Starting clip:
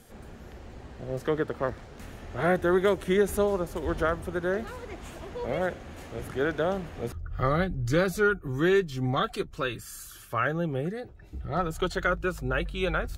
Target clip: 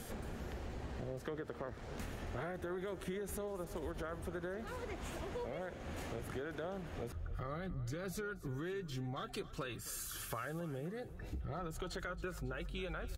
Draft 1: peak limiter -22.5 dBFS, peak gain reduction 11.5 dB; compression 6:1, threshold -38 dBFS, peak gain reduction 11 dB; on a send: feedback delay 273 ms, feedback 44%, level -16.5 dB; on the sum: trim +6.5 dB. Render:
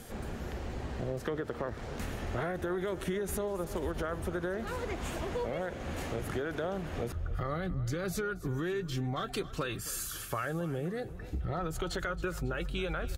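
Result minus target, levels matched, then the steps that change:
compression: peak gain reduction -8 dB
change: compression 6:1, threshold -47.5 dBFS, peak gain reduction 19 dB

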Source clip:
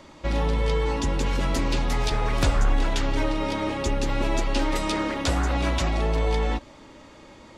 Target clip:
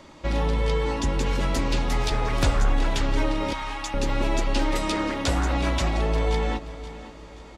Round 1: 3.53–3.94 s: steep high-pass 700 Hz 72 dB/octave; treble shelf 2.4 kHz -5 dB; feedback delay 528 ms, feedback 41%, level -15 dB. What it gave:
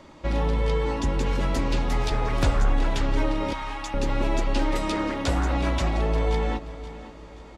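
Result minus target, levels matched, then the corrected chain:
4 kHz band -3.0 dB
3.53–3.94 s: steep high-pass 700 Hz 72 dB/octave; feedback delay 528 ms, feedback 41%, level -15 dB

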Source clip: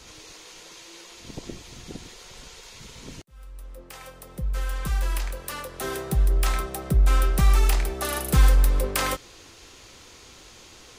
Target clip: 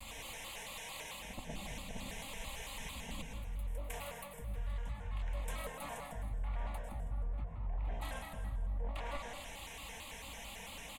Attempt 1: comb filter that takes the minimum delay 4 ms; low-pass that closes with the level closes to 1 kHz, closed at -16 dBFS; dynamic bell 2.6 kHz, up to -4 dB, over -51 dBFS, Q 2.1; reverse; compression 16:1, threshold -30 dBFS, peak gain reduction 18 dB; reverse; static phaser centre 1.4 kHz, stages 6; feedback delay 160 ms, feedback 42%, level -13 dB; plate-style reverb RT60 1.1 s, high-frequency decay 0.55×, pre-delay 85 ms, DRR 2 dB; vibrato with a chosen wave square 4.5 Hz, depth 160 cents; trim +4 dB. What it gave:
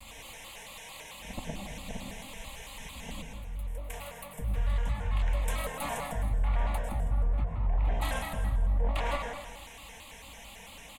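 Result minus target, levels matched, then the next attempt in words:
compression: peak gain reduction -11 dB
comb filter that takes the minimum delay 4 ms; low-pass that closes with the level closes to 1 kHz, closed at -16 dBFS; dynamic bell 2.6 kHz, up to -4 dB, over -51 dBFS, Q 2.1; reverse; compression 16:1, threshold -41.5 dBFS, peak gain reduction 29 dB; reverse; static phaser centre 1.4 kHz, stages 6; feedback delay 160 ms, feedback 42%, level -13 dB; plate-style reverb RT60 1.1 s, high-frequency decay 0.55×, pre-delay 85 ms, DRR 2 dB; vibrato with a chosen wave square 4.5 Hz, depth 160 cents; trim +4 dB

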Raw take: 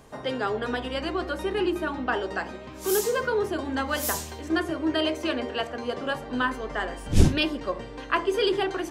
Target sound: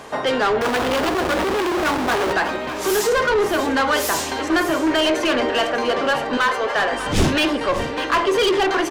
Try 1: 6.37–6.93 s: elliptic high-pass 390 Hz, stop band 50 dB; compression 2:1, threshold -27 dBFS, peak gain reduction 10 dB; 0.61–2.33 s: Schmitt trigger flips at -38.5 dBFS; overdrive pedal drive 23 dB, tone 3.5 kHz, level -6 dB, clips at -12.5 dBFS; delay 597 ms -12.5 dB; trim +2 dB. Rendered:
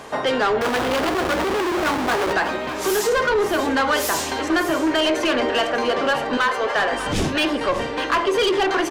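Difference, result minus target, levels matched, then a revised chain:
compression: peak gain reduction +10 dB
0.61–2.33 s: Schmitt trigger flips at -38.5 dBFS; 6.37–6.93 s: elliptic high-pass 390 Hz, stop band 50 dB; overdrive pedal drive 23 dB, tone 3.5 kHz, level -6 dB, clips at -12.5 dBFS; delay 597 ms -12.5 dB; trim +2 dB

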